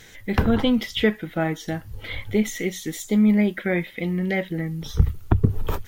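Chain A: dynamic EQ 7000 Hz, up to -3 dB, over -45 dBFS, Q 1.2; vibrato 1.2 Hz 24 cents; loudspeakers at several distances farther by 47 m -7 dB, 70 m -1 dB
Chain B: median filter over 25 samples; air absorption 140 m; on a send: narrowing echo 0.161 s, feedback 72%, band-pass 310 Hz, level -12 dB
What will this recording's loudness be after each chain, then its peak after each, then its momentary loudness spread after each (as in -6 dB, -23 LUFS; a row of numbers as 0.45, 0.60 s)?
-21.0, -24.0 LUFS; -4.0, -4.0 dBFS; 8, 11 LU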